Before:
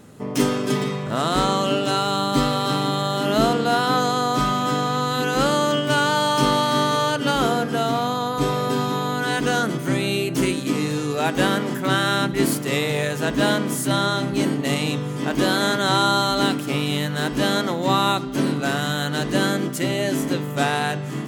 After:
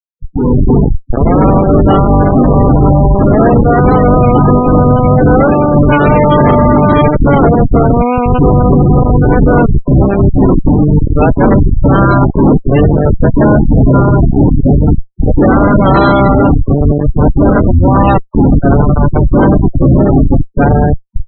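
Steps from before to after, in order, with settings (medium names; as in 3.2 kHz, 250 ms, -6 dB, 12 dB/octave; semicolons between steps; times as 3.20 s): Schmitt trigger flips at -19 dBFS; steep low-pass 5.5 kHz 96 dB/octave; spectral gate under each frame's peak -15 dB strong; level rider gain up to 15 dB; loudness maximiser +6.5 dB; trim -1 dB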